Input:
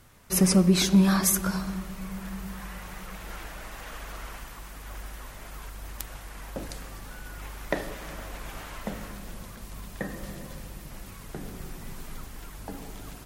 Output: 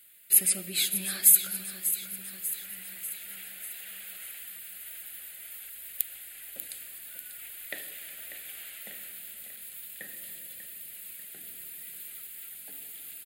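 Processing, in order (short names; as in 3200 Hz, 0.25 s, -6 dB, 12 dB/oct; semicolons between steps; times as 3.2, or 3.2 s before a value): differentiator; fixed phaser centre 2500 Hz, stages 4; feedback echo 0.592 s, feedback 58%, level -11 dB; gain +8 dB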